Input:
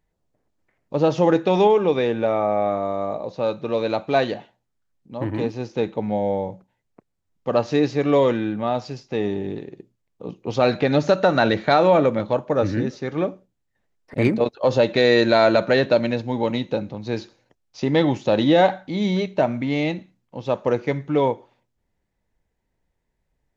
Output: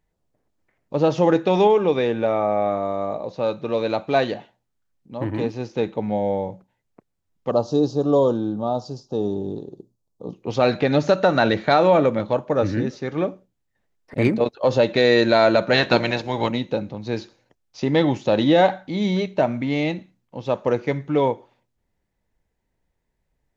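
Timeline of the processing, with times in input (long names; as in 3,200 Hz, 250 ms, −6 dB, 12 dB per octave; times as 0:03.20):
0:07.51–0:10.33: Butterworth band-reject 2,100 Hz, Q 0.69
0:15.72–0:16.47: ceiling on every frequency bin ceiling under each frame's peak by 16 dB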